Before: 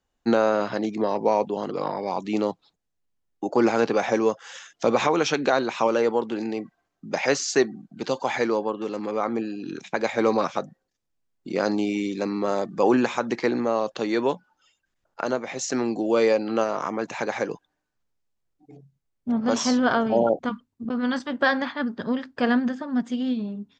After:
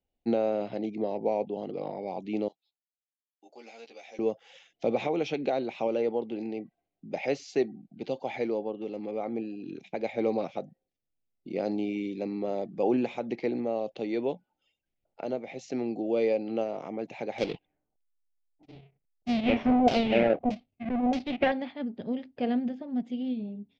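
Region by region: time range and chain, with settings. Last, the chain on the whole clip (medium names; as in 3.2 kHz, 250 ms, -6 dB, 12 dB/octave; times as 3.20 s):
2.48–4.19 s: differentiator + doubling 13 ms -3 dB
17.38–21.52 s: square wave that keeps the level + LFO low-pass saw down 1.6 Hz 710–6400 Hz
whole clip: low-pass 2.8 kHz 12 dB/octave; high-order bell 1.3 kHz -15 dB 1.1 oct; trim -6 dB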